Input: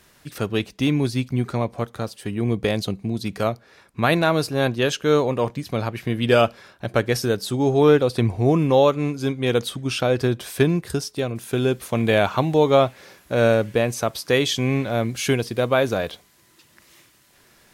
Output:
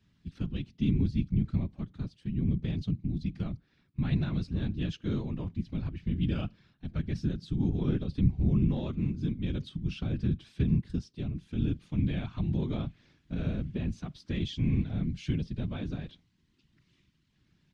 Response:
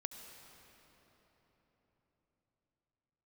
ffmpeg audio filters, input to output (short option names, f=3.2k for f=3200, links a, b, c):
-filter_complex "[0:a]highpass=110,lowpass=5.1k,aemphasis=mode=reproduction:type=50fm,asplit=2[a][b];[b]alimiter=limit=-12dB:level=0:latency=1:release=88,volume=0dB[c];[a][c]amix=inputs=2:normalize=0,afftfilt=real='hypot(re,im)*cos(2*PI*random(0))':imag='hypot(re,im)*sin(2*PI*random(1))':win_size=512:overlap=0.75,aeval=exprs='0.531*(cos(1*acos(clip(val(0)/0.531,-1,1)))-cos(1*PI/2))+0.0237*(cos(3*acos(clip(val(0)/0.531,-1,1)))-cos(3*PI/2))':c=same,firequalizer=gain_entry='entry(160,0);entry(490,-26);entry(3100,-12)':delay=0.05:min_phase=1"